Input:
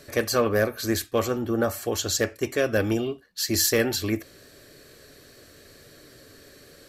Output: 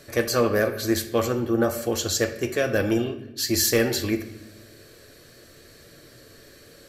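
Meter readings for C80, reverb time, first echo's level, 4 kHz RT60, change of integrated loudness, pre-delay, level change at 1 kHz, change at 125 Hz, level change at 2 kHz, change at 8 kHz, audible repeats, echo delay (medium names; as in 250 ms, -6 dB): 14.0 dB, 0.90 s, no echo, 0.75 s, +1.0 dB, 6 ms, +0.5 dB, +1.5 dB, +1.0 dB, +0.5 dB, no echo, no echo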